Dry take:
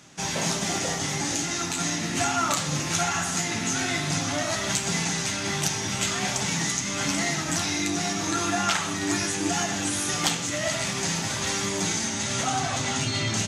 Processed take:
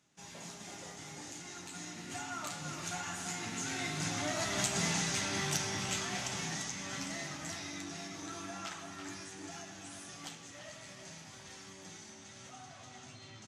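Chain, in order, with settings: Doppler pass-by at 4.97, 9 m/s, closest 7.9 m; speakerphone echo 0.34 s, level -6 dB; gain -6.5 dB

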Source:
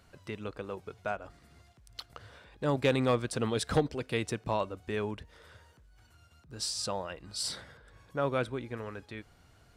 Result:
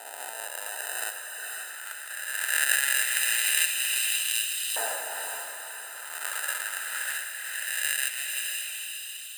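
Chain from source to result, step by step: spectral swells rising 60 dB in 1.90 s; sample-and-hold 41×; resonant high shelf 6700 Hz +6.5 dB, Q 3; speed mistake 24 fps film run at 25 fps; on a send: diffused feedback echo 0.529 s, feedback 52%, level -3.5 dB; on the sum: LFO high-pass saw up 0.21 Hz 790–3200 Hz; tilt shelf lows -6.5 dB, about 740 Hz; gain -3 dB

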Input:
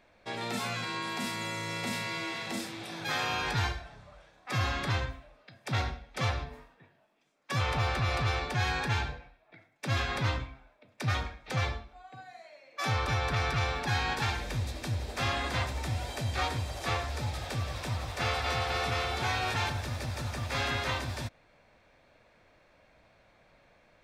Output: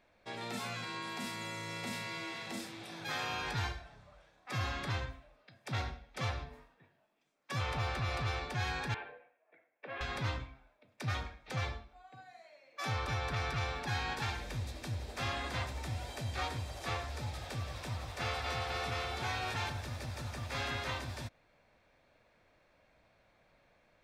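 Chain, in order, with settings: 8.94–10.01 speaker cabinet 470–2400 Hz, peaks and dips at 490 Hz +7 dB, 870 Hz -5 dB, 1300 Hz -6 dB, 2100 Hz -3 dB; gain -6 dB

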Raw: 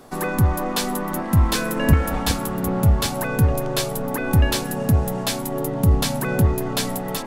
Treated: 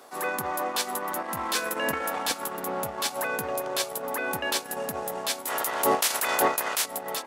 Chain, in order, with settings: 5.46–6.84 spectral limiter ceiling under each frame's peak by 24 dB; HPF 520 Hz 12 dB/oct; transient shaper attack -7 dB, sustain -11 dB

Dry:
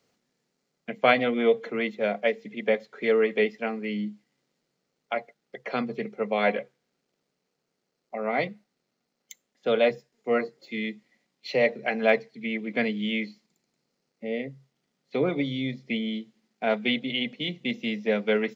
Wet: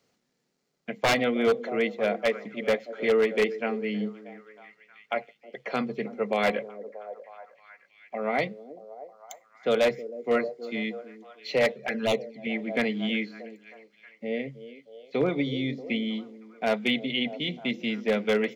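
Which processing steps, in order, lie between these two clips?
delay with a stepping band-pass 0.316 s, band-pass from 350 Hz, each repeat 0.7 oct, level -11 dB; wavefolder -15.5 dBFS; 11.72–12.47 envelope flanger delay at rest 2.2 ms, full sweep at -20 dBFS

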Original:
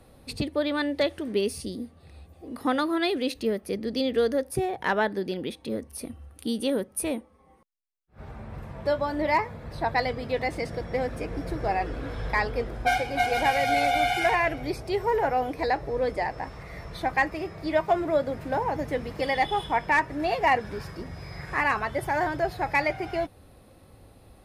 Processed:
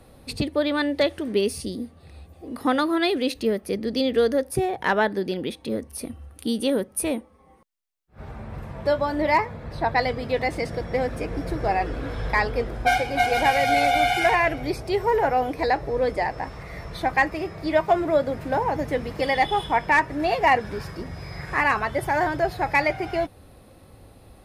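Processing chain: 9.45–10.01 high shelf 7700 Hz -7.5 dB; gain +3.5 dB

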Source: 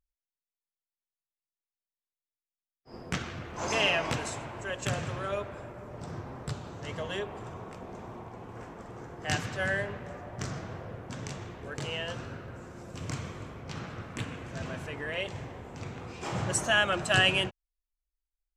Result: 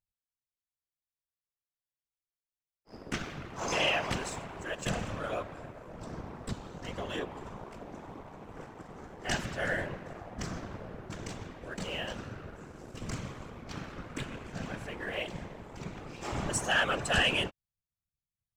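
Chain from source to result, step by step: whisperiser; sample leveller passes 1; gain -5.5 dB

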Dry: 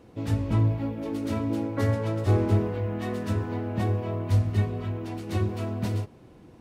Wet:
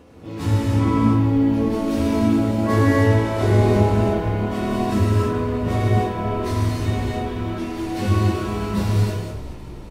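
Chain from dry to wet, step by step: dynamic EQ 160 Hz, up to -6 dB, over -46 dBFS, Q 5.7; plain phase-vocoder stretch 1.5×; frequency-shifting echo 0.418 s, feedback 60%, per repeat -38 Hz, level -16 dB; non-linear reverb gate 0.35 s flat, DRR -6 dB; gain +5.5 dB

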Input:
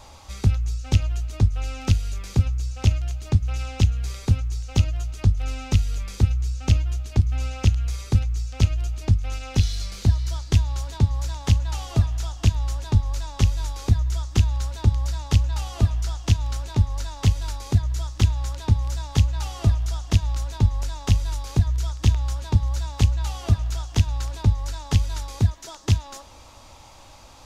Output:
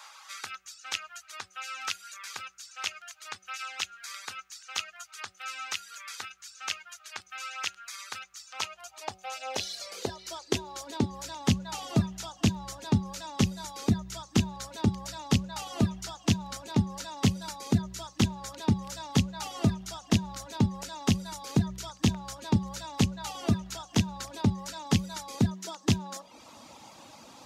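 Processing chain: reverb removal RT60 0.72 s; high-pass sweep 1400 Hz -> 200 Hz, 8.12–11.48; de-hum 188.4 Hz, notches 4

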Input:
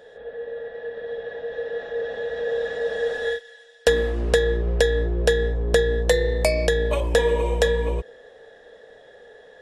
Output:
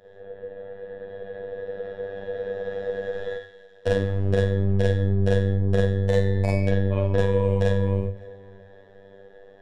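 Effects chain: RIAA curve playback; Schroeder reverb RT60 0.42 s, combs from 31 ms, DRR -5 dB; robotiser 98.1 Hz; 6.71–7.18 air absorption 150 m; on a send: tape echo 0.561 s, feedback 46%, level -22 dB, low-pass 3000 Hz; on the sum: ending taper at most 190 dB/s; gain -8 dB

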